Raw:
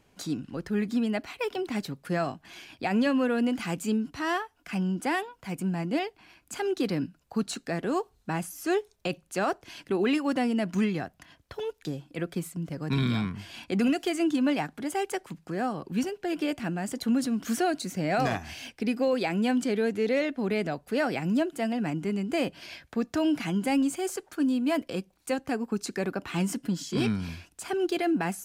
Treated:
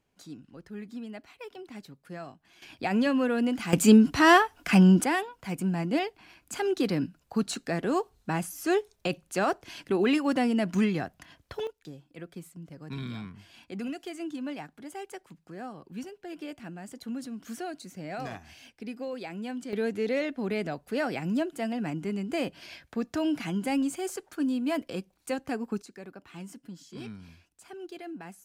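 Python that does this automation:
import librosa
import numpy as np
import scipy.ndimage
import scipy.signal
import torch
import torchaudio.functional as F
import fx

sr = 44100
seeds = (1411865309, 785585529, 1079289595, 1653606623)

y = fx.gain(x, sr, db=fx.steps((0.0, -12.5), (2.62, -0.5), (3.73, 11.0), (5.04, 1.0), (11.67, -10.5), (19.73, -2.5), (25.82, -14.5)))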